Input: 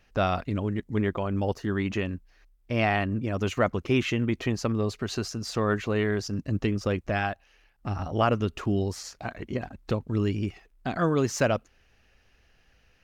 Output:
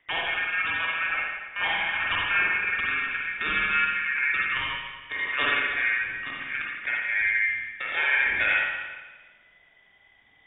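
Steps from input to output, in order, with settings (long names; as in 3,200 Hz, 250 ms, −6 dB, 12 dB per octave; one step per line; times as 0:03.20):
gliding playback speed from 182% → 67%
dynamic equaliser 1,200 Hz, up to −5 dB, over −40 dBFS, Q 0.75
ring modulation 1,600 Hz
voice inversion scrambler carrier 3,600 Hz
spring reverb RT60 1.3 s, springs 45/55 ms, chirp 60 ms, DRR −4 dB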